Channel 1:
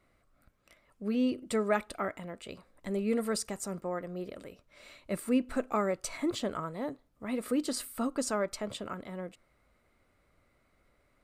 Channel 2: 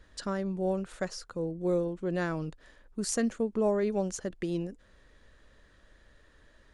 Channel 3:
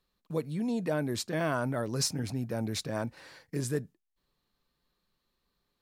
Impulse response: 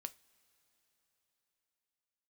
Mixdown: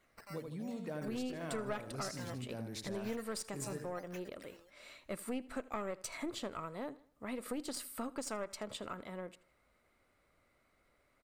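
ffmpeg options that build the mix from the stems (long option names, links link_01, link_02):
-filter_complex "[0:a]lowshelf=frequency=260:gain=-6.5,aeval=exprs='(tanh(11.2*val(0)+0.75)-tanh(0.75))/11.2':channel_layout=same,volume=3dB,asplit=2[link_01][link_02];[link_02]volume=-21dB[link_03];[1:a]highpass=940,aecho=1:1:3.7:0.91,acrusher=samples=9:mix=1:aa=0.000001:lfo=1:lforange=9:lforate=0.88,volume=-15.5dB[link_04];[2:a]volume=-9.5dB,asplit=2[link_05][link_06];[link_06]volume=-6.5dB[link_07];[link_03][link_07]amix=inputs=2:normalize=0,aecho=0:1:79|158|237|316|395:1|0.34|0.116|0.0393|0.0134[link_08];[link_01][link_04][link_05][link_08]amix=inputs=4:normalize=0,acompressor=threshold=-39dB:ratio=2.5"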